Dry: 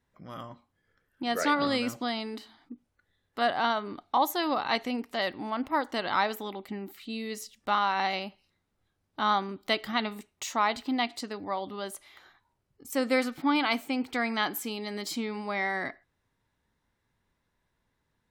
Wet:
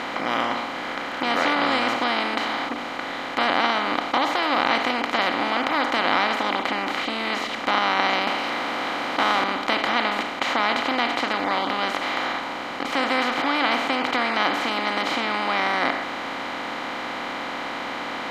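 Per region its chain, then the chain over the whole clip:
8.27–9.44 HPF 320 Hz + power-law curve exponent 0.7 + notch 6900 Hz, Q 5.7
whole clip: per-bin compression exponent 0.2; LPF 3200 Hz 12 dB/oct; high shelf 2300 Hz +9 dB; gain -5 dB

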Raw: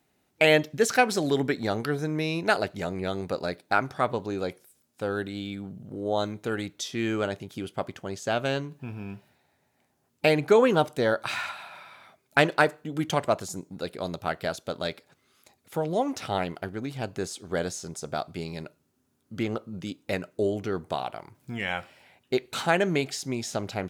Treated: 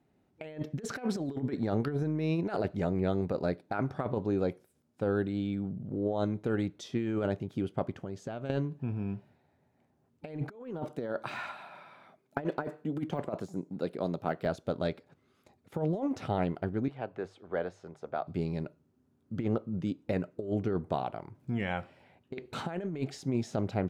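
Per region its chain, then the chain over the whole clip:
7.99–8.5 compressor 4:1, threshold -36 dBFS + mismatched tape noise reduction encoder only
10.55–14.46 HPF 160 Hz + de-esser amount 95% + high shelf 10000 Hz +3 dB
16.88–18.27 three-band isolator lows -14 dB, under 460 Hz, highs -18 dB, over 3200 Hz + notches 50/100/150 Hz
whole clip: HPF 180 Hz 6 dB/oct; tilt -4 dB/oct; negative-ratio compressor -24 dBFS, ratio -0.5; gain -6 dB

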